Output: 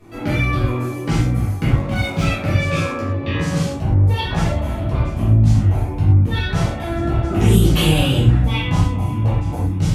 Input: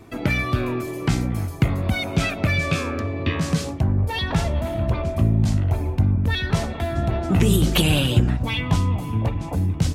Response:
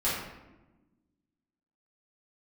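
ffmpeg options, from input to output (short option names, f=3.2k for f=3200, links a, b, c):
-filter_complex "[1:a]atrim=start_sample=2205,atrim=end_sample=3969,asetrate=28665,aresample=44100[a];[0:a][a]afir=irnorm=-1:irlink=0,asettb=1/sr,asplit=3[b][c][d];[b]atrim=end=1.684[e];[c]atrim=start=1.68:end=2.26,asetpts=PTS-STARTPTS,afade=t=in:d=0.004:c=qsin,afade=t=out:st=0.576:d=0.004:c=qsin,adynamicsmooth=sensitivity=6:basefreq=1.9k[f];[d]atrim=start=2.256[g];[e][f]acrossfade=d=0.004:c1=hsin:c2=qsin[h];[h][g]acrossfade=d=0.004:c1=qsin:c2=hsin,volume=-9dB"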